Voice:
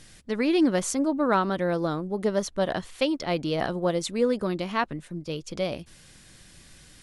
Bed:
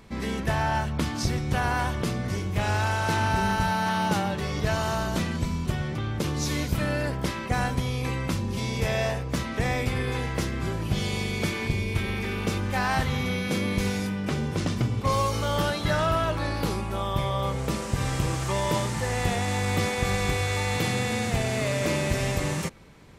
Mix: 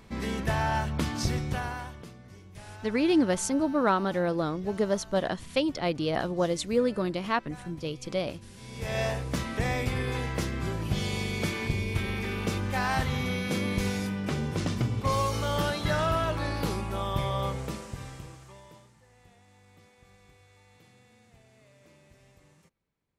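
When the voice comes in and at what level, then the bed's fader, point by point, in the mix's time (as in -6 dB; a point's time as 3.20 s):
2.55 s, -1.5 dB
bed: 1.40 s -2 dB
2.17 s -20.5 dB
8.55 s -20.5 dB
8.99 s -2.5 dB
17.45 s -2.5 dB
19.02 s -32.5 dB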